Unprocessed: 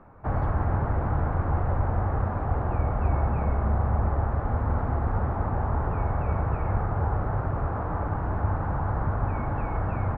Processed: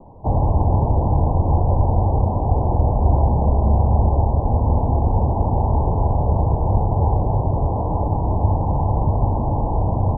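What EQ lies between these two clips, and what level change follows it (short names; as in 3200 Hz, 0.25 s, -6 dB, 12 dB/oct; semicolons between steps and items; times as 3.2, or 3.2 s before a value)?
steep low-pass 1000 Hz 96 dB/oct; +8.5 dB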